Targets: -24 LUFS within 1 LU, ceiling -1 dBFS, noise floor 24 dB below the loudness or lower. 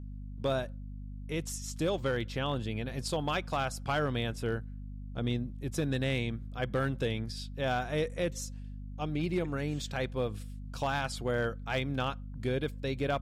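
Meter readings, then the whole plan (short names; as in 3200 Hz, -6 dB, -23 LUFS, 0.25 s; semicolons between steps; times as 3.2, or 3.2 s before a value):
clipped 0.6%; flat tops at -23.0 dBFS; hum 50 Hz; harmonics up to 250 Hz; hum level -40 dBFS; loudness -34.0 LUFS; peak -23.0 dBFS; loudness target -24.0 LUFS
-> clip repair -23 dBFS; de-hum 50 Hz, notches 5; gain +10 dB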